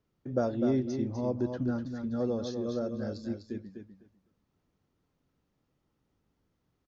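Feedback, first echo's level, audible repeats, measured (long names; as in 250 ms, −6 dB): 16%, −7.0 dB, 2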